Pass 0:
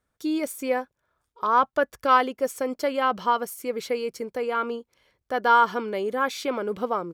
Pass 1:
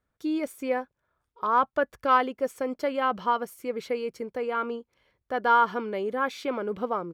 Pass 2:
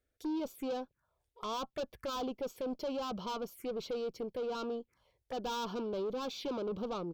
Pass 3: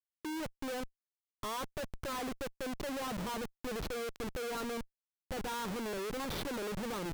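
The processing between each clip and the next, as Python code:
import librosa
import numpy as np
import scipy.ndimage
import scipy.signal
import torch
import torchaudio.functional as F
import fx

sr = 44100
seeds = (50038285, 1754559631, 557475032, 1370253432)

y1 = fx.bass_treble(x, sr, bass_db=2, treble_db=-8)
y1 = y1 * librosa.db_to_amplitude(-2.5)
y2 = fx.tube_stage(y1, sr, drive_db=32.0, bias=0.2)
y2 = fx.env_phaser(y2, sr, low_hz=170.0, high_hz=1900.0, full_db=-36.5)
y3 = fx.schmitt(y2, sr, flips_db=-41.5)
y3 = y3 * librosa.db_to_amplitude(1.0)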